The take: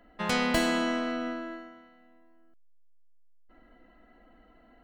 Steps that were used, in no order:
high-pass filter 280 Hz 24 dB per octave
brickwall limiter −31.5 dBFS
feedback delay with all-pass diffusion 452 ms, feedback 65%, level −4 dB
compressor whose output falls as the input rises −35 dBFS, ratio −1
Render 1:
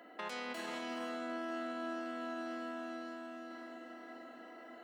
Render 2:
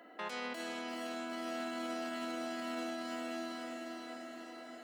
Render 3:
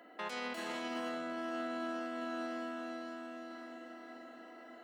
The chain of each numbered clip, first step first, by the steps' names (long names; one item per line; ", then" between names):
compressor whose output falls as the input rises, then feedback delay with all-pass diffusion, then brickwall limiter, then high-pass filter
feedback delay with all-pass diffusion, then compressor whose output falls as the input rises, then high-pass filter, then brickwall limiter
high-pass filter, then compressor whose output falls as the input rises, then feedback delay with all-pass diffusion, then brickwall limiter